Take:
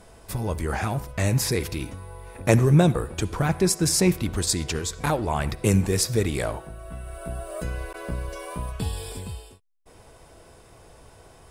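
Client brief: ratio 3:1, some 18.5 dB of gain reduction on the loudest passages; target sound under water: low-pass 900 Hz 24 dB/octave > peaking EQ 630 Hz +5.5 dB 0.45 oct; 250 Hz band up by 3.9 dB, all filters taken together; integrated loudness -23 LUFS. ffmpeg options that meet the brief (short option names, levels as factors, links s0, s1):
-af "equalizer=f=250:t=o:g=6,acompressor=threshold=0.0141:ratio=3,lowpass=f=900:w=0.5412,lowpass=f=900:w=1.3066,equalizer=f=630:t=o:w=0.45:g=5.5,volume=5.62"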